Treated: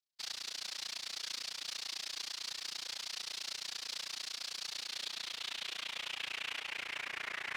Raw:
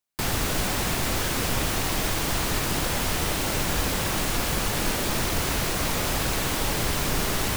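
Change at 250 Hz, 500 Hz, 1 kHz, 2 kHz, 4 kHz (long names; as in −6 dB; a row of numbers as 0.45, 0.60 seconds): −35.0, −28.0, −21.5, −13.0, −8.5 decibels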